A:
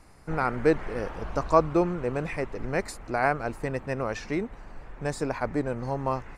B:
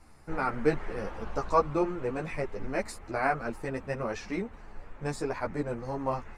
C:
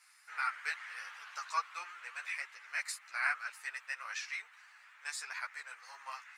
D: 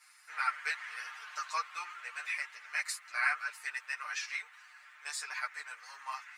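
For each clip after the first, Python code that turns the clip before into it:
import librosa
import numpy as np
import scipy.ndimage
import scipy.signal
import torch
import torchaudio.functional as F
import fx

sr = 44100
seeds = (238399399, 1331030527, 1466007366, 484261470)

y1 = fx.ensemble(x, sr)
y2 = scipy.signal.sosfilt(scipy.signal.butter(4, 1500.0, 'highpass', fs=sr, output='sos'), y1)
y2 = F.gain(torch.from_numpy(y2), 3.0).numpy()
y3 = y2 + 0.95 * np.pad(y2, (int(6.6 * sr / 1000.0), 0))[:len(y2)]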